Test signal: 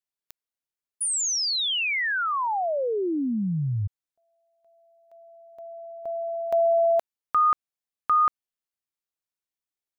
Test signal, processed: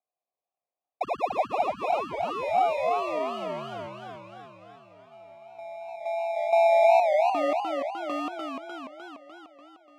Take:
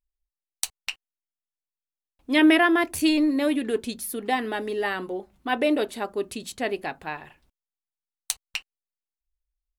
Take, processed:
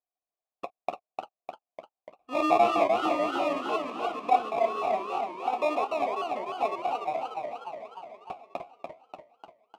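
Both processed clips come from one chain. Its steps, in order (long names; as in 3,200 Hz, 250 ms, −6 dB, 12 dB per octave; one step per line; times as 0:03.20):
decimation without filtering 29×
formant filter a
feedback echo with a swinging delay time 297 ms, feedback 62%, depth 173 cents, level −4 dB
level +7 dB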